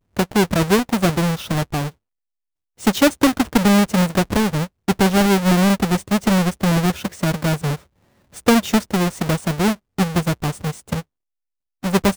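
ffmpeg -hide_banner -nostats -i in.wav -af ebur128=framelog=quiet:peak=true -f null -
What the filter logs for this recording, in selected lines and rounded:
Integrated loudness:
  I:         -18.9 LUFS
  Threshold: -29.2 LUFS
Loudness range:
  LRA:         3.7 LU
  Threshold: -39.1 LUFS
  LRA low:   -20.9 LUFS
  LRA high:  -17.1 LUFS
True peak:
  Peak:       -4.3 dBFS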